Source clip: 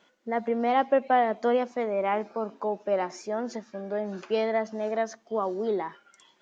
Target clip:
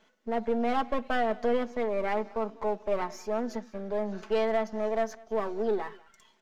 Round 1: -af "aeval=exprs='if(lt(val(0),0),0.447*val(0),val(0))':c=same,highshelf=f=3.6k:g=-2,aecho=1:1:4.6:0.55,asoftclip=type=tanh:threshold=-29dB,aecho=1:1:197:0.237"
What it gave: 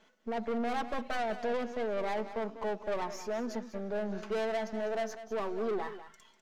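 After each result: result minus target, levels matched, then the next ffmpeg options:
soft clip: distortion +11 dB; echo-to-direct +10.5 dB
-af "aeval=exprs='if(lt(val(0),0),0.447*val(0),val(0))':c=same,highshelf=f=3.6k:g=-2,aecho=1:1:4.6:0.55,asoftclip=type=tanh:threshold=-17dB,aecho=1:1:197:0.237"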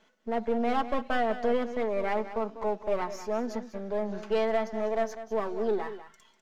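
echo-to-direct +10.5 dB
-af "aeval=exprs='if(lt(val(0),0),0.447*val(0),val(0))':c=same,highshelf=f=3.6k:g=-2,aecho=1:1:4.6:0.55,asoftclip=type=tanh:threshold=-17dB,aecho=1:1:197:0.0708"

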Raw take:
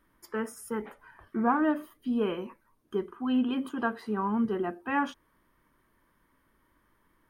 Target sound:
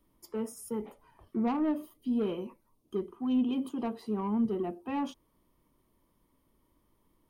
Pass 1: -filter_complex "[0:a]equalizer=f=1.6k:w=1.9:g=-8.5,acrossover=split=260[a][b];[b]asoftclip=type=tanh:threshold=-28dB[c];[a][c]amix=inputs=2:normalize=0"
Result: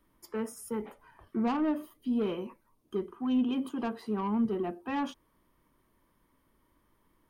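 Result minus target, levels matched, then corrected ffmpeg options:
2000 Hz band +5.5 dB
-filter_complex "[0:a]equalizer=f=1.6k:w=1.9:g=-19.5,acrossover=split=260[a][b];[b]asoftclip=type=tanh:threshold=-28dB[c];[a][c]amix=inputs=2:normalize=0"

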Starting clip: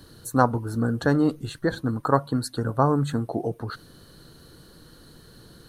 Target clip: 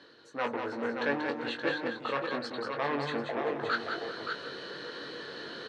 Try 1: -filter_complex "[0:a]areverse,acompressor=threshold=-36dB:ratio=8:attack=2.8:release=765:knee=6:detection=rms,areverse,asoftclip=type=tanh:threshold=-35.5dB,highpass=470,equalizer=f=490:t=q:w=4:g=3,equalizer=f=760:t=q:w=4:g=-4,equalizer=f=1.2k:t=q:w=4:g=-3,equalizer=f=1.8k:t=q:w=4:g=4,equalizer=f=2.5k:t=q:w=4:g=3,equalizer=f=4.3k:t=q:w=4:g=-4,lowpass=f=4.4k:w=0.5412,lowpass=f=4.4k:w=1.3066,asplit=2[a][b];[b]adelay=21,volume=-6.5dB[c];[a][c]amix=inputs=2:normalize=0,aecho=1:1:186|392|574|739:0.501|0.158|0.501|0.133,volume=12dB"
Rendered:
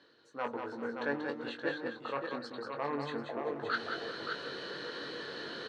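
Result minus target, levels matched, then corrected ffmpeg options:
compressor: peak gain reduction +8 dB
-filter_complex "[0:a]areverse,acompressor=threshold=-27dB:ratio=8:attack=2.8:release=765:knee=6:detection=rms,areverse,asoftclip=type=tanh:threshold=-35.5dB,highpass=470,equalizer=f=490:t=q:w=4:g=3,equalizer=f=760:t=q:w=4:g=-4,equalizer=f=1.2k:t=q:w=4:g=-3,equalizer=f=1.8k:t=q:w=4:g=4,equalizer=f=2.5k:t=q:w=4:g=3,equalizer=f=4.3k:t=q:w=4:g=-4,lowpass=f=4.4k:w=0.5412,lowpass=f=4.4k:w=1.3066,asplit=2[a][b];[b]adelay=21,volume=-6.5dB[c];[a][c]amix=inputs=2:normalize=0,aecho=1:1:186|392|574|739:0.501|0.158|0.501|0.133,volume=12dB"

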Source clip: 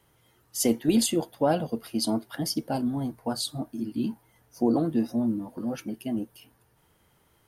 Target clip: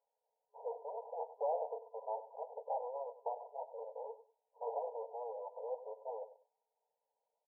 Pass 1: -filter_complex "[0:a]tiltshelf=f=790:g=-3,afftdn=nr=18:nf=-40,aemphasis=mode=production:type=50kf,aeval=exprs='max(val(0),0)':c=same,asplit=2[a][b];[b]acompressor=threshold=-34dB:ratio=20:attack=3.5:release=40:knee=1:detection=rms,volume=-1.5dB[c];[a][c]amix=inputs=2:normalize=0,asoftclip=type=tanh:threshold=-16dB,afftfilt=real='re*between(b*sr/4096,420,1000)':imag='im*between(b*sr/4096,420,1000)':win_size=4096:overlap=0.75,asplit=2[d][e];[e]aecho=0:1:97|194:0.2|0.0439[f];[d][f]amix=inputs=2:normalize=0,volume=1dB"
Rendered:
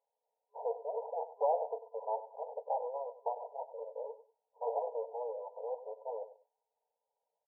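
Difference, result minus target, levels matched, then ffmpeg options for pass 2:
soft clip: distortion -5 dB
-filter_complex "[0:a]tiltshelf=f=790:g=-3,afftdn=nr=18:nf=-40,aemphasis=mode=production:type=50kf,aeval=exprs='max(val(0),0)':c=same,asplit=2[a][b];[b]acompressor=threshold=-34dB:ratio=20:attack=3.5:release=40:knee=1:detection=rms,volume=-1.5dB[c];[a][c]amix=inputs=2:normalize=0,asoftclip=type=tanh:threshold=-25.5dB,afftfilt=real='re*between(b*sr/4096,420,1000)':imag='im*between(b*sr/4096,420,1000)':win_size=4096:overlap=0.75,asplit=2[d][e];[e]aecho=0:1:97|194:0.2|0.0439[f];[d][f]amix=inputs=2:normalize=0,volume=1dB"

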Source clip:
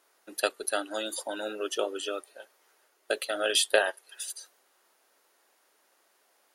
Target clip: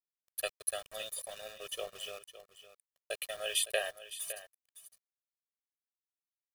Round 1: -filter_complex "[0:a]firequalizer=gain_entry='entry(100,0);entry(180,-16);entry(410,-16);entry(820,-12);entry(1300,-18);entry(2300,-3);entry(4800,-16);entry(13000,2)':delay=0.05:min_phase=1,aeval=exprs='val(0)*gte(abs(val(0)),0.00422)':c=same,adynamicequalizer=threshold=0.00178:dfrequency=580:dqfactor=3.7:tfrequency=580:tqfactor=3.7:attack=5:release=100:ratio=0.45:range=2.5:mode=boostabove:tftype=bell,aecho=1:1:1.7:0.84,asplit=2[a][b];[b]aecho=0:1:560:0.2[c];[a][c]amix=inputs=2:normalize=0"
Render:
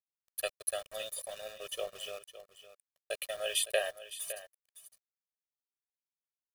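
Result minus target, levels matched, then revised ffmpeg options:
500 Hz band +2.5 dB
-filter_complex "[0:a]firequalizer=gain_entry='entry(100,0);entry(180,-16);entry(410,-16);entry(820,-12);entry(1300,-18);entry(2300,-3);entry(4800,-16);entry(13000,2)':delay=0.05:min_phase=1,aeval=exprs='val(0)*gte(abs(val(0)),0.00422)':c=same,aecho=1:1:1.7:0.84,asplit=2[a][b];[b]aecho=0:1:560:0.2[c];[a][c]amix=inputs=2:normalize=0"

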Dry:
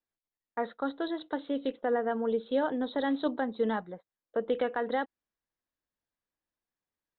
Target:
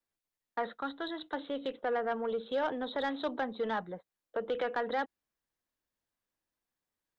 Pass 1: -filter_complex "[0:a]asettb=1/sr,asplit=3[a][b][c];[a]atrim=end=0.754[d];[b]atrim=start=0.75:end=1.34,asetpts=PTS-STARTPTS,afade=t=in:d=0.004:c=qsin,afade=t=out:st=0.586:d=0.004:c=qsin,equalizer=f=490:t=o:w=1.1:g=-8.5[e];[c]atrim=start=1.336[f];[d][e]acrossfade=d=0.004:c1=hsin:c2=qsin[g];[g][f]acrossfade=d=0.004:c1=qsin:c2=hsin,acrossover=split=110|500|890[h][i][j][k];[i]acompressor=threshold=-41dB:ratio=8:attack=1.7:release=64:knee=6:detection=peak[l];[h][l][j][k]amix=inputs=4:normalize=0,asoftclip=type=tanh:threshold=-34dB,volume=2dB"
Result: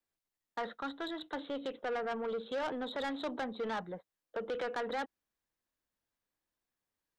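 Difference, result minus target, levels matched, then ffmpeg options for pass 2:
soft clip: distortion +8 dB
-filter_complex "[0:a]asettb=1/sr,asplit=3[a][b][c];[a]atrim=end=0.754[d];[b]atrim=start=0.75:end=1.34,asetpts=PTS-STARTPTS,afade=t=in:d=0.004:c=qsin,afade=t=out:st=0.586:d=0.004:c=qsin,equalizer=f=490:t=o:w=1.1:g=-8.5[e];[c]atrim=start=1.336[f];[d][e]acrossfade=d=0.004:c1=hsin:c2=qsin[g];[g][f]acrossfade=d=0.004:c1=qsin:c2=hsin,acrossover=split=110|500|890[h][i][j][k];[i]acompressor=threshold=-41dB:ratio=8:attack=1.7:release=64:knee=6:detection=peak[l];[h][l][j][k]amix=inputs=4:normalize=0,asoftclip=type=tanh:threshold=-26.5dB,volume=2dB"

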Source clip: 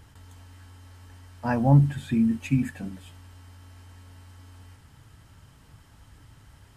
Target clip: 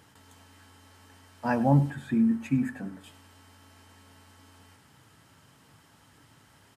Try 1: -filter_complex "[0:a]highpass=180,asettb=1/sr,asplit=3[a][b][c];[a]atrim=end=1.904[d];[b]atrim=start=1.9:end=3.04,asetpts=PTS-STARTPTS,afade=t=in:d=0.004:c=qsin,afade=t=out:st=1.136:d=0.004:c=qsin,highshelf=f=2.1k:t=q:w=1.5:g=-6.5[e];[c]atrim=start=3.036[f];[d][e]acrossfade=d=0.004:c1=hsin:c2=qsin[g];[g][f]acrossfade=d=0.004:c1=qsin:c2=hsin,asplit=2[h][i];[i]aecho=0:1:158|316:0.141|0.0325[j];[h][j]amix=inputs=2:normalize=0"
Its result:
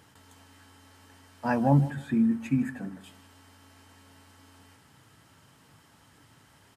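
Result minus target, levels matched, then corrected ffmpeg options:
echo 57 ms late
-filter_complex "[0:a]highpass=180,asettb=1/sr,asplit=3[a][b][c];[a]atrim=end=1.904[d];[b]atrim=start=1.9:end=3.04,asetpts=PTS-STARTPTS,afade=t=in:d=0.004:c=qsin,afade=t=out:st=1.136:d=0.004:c=qsin,highshelf=f=2.1k:t=q:w=1.5:g=-6.5[e];[c]atrim=start=3.036[f];[d][e]acrossfade=d=0.004:c1=hsin:c2=qsin[g];[g][f]acrossfade=d=0.004:c1=qsin:c2=hsin,asplit=2[h][i];[i]aecho=0:1:101|202:0.141|0.0325[j];[h][j]amix=inputs=2:normalize=0"

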